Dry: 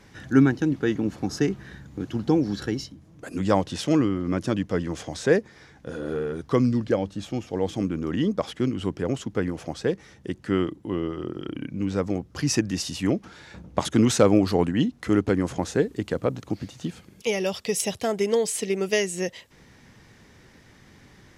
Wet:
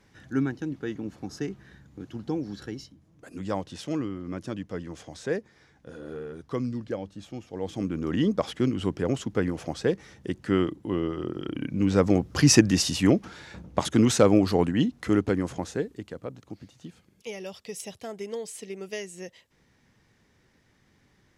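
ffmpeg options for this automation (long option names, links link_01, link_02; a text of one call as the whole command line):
ffmpeg -i in.wav -af "volume=7dB,afade=type=in:start_time=7.52:duration=0.65:silence=0.354813,afade=type=in:start_time=11.5:duration=0.87:silence=0.446684,afade=type=out:start_time=12.37:duration=1.3:silence=0.398107,afade=type=out:start_time=15.05:duration=1.09:silence=0.281838" out.wav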